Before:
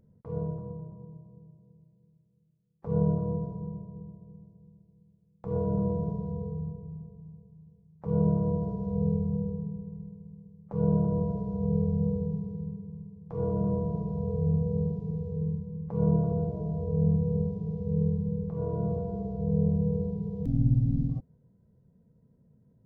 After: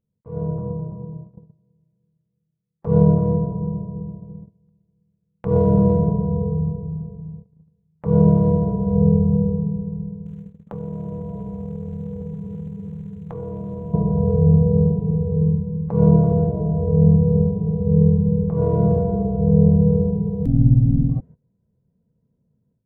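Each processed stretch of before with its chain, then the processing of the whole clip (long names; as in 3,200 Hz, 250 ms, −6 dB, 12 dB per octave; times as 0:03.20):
0:10.26–0:13.94: downward compressor 5 to 1, threshold −41 dBFS + floating-point word with a short mantissa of 4 bits + one half of a high-frequency compander encoder only
whole clip: adaptive Wiener filter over 9 samples; noise gate −49 dBFS, range −18 dB; automatic gain control gain up to 13 dB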